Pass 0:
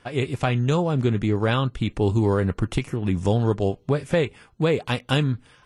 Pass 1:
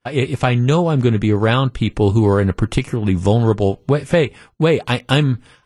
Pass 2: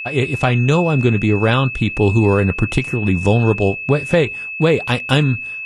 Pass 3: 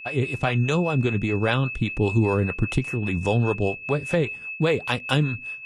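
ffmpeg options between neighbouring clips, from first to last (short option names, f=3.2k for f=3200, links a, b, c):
-af "agate=range=-33dB:threshold=-45dB:ratio=3:detection=peak,volume=6.5dB"
-af "aeval=exprs='val(0)+0.0562*sin(2*PI*2600*n/s)':c=same"
-filter_complex "[0:a]acrossover=split=420[a][b];[a]aeval=exprs='val(0)*(1-0.7/2+0.7/2*cos(2*PI*5*n/s))':c=same[c];[b]aeval=exprs='val(0)*(1-0.7/2-0.7/2*cos(2*PI*5*n/s))':c=same[d];[c][d]amix=inputs=2:normalize=0,volume=-4dB"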